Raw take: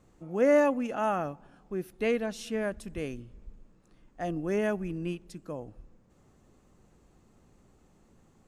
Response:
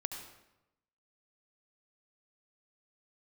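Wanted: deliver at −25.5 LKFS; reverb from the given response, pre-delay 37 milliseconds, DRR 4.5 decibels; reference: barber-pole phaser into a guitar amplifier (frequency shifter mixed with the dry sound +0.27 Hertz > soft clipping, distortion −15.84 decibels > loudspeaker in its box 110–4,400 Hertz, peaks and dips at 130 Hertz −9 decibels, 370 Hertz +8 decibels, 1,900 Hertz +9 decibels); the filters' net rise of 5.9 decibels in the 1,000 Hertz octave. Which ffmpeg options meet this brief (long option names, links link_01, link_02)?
-filter_complex "[0:a]equalizer=frequency=1000:width_type=o:gain=7,asplit=2[link_01][link_02];[1:a]atrim=start_sample=2205,adelay=37[link_03];[link_02][link_03]afir=irnorm=-1:irlink=0,volume=-5dB[link_04];[link_01][link_04]amix=inputs=2:normalize=0,asplit=2[link_05][link_06];[link_06]afreqshift=0.27[link_07];[link_05][link_07]amix=inputs=2:normalize=1,asoftclip=threshold=-17dB,highpass=110,equalizer=frequency=130:width_type=q:width=4:gain=-9,equalizer=frequency=370:width_type=q:width=4:gain=8,equalizer=frequency=1900:width_type=q:width=4:gain=9,lowpass=frequency=4400:width=0.5412,lowpass=frequency=4400:width=1.3066,volume=4.5dB"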